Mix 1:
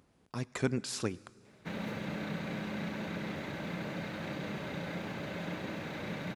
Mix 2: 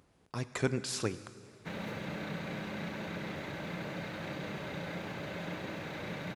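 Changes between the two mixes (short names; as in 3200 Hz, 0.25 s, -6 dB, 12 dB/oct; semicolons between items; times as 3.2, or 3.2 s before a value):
speech: send +9.0 dB; master: add bell 230 Hz -4.5 dB 0.59 oct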